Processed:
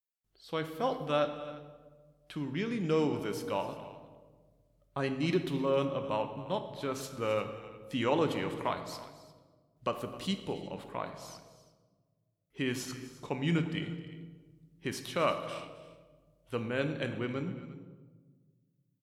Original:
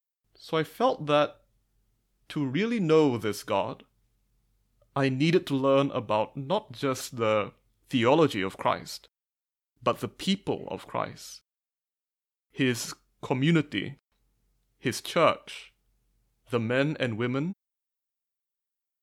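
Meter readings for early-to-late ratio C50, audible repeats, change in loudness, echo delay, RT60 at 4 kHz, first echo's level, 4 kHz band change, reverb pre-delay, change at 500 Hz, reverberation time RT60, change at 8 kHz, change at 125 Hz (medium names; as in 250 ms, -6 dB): 9.0 dB, 2, -7.0 dB, 264 ms, 0.85 s, -17.5 dB, -7.0 dB, 5 ms, -6.5 dB, 1.4 s, -7.0 dB, -6.0 dB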